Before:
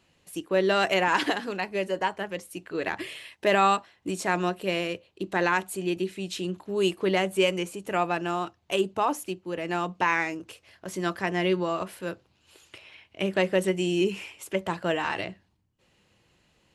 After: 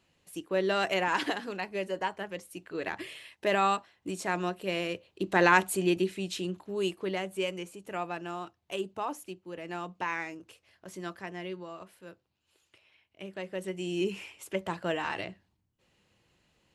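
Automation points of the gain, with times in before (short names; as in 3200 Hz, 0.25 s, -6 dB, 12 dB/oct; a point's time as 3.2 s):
4.64 s -5 dB
5.63 s +4 dB
7.19 s -9 dB
10.91 s -9 dB
11.59 s -15 dB
13.41 s -15 dB
14.1 s -4.5 dB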